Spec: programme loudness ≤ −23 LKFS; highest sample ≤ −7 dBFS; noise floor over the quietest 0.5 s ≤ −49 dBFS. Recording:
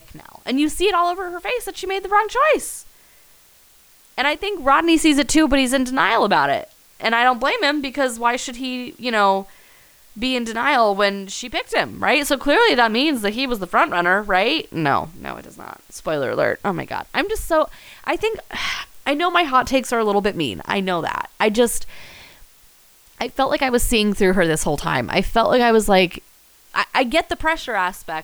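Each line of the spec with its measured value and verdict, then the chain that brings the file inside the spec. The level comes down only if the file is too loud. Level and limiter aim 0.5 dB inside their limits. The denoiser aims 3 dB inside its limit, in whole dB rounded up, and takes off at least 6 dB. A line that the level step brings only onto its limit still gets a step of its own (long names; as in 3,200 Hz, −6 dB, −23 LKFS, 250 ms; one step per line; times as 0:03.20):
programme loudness −19.0 LKFS: out of spec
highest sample −4.0 dBFS: out of spec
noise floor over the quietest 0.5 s −52 dBFS: in spec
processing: level −4.5 dB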